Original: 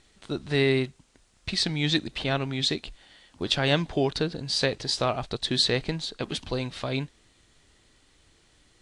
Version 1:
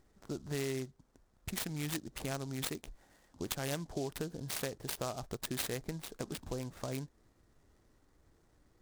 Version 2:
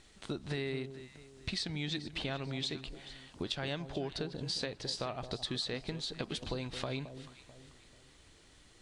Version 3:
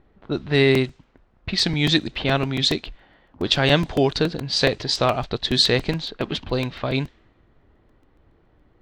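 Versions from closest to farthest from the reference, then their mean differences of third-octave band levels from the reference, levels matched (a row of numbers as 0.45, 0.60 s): 3, 2, 1; 2.5, 5.0, 8.0 dB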